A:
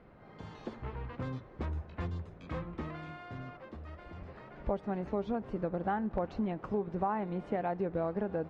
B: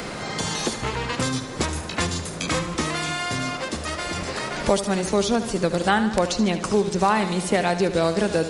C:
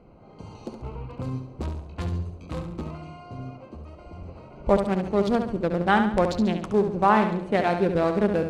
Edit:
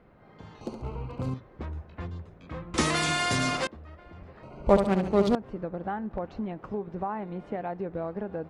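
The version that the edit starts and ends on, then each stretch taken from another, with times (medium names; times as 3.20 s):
A
0.61–1.34 s: from C
2.74–3.67 s: from B
4.43–5.35 s: from C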